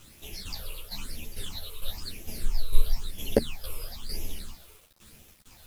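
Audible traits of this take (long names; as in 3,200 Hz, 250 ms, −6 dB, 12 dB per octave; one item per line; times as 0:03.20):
tremolo saw down 2.2 Hz, depth 70%
phaser sweep stages 8, 1 Hz, lowest notch 220–1,400 Hz
a quantiser's noise floor 10 bits, dither none
a shimmering, thickened sound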